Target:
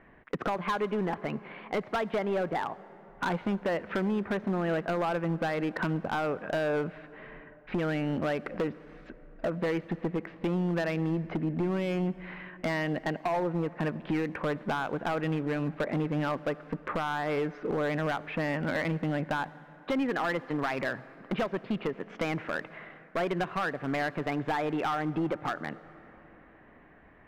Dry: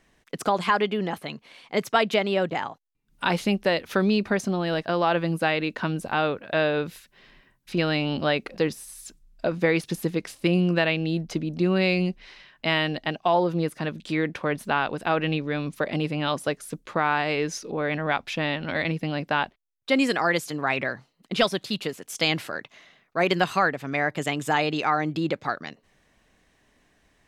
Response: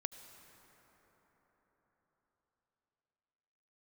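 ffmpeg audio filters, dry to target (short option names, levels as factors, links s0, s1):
-filter_complex "[0:a]lowpass=f=2000:w=0.5412,lowpass=f=2000:w=1.3066,lowshelf=f=82:g=-6,acompressor=threshold=0.0158:ratio=4,asoftclip=type=hard:threshold=0.0211,asplit=2[s0][s1];[1:a]atrim=start_sample=2205,asetrate=52920,aresample=44100[s2];[s1][s2]afir=irnorm=-1:irlink=0,volume=0.75[s3];[s0][s3]amix=inputs=2:normalize=0,volume=1.88"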